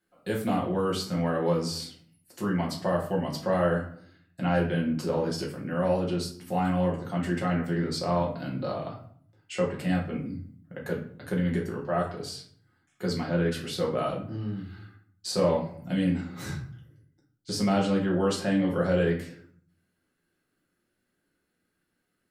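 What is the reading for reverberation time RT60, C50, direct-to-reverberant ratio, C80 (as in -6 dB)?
0.55 s, 7.5 dB, -3.5 dB, 12.0 dB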